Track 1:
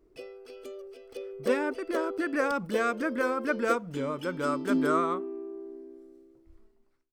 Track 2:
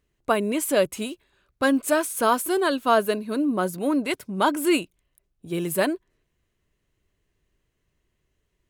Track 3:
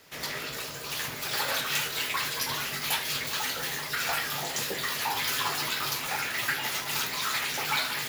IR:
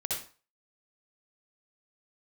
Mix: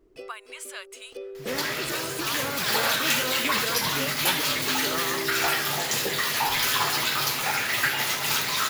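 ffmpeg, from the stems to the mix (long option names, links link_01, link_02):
-filter_complex "[0:a]volume=-3dB[link_01];[1:a]highpass=frequency=1100:width=0.5412,highpass=frequency=1100:width=1.3066,equalizer=frequency=14000:width_type=o:width=0.5:gain=-14.5,acompressor=threshold=-31dB:ratio=2,volume=-10dB,asplit=2[link_02][link_03];[2:a]adelay=1350,volume=3dB,asplit=2[link_04][link_05];[link_05]volume=-11.5dB[link_06];[link_03]apad=whole_len=314198[link_07];[link_01][link_07]sidechaincompress=threshold=-48dB:ratio=8:attack=16:release=267[link_08];[link_08][link_02]amix=inputs=2:normalize=0,acontrast=29,alimiter=limit=-24dB:level=0:latency=1,volume=0dB[link_09];[3:a]atrim=start_sample=2205[link_10];[link_06][link_10]afir=irnorm=-1:irlink=0[link_11];[link_04][link_09][link_11]amix=inputs=3:normalize=0"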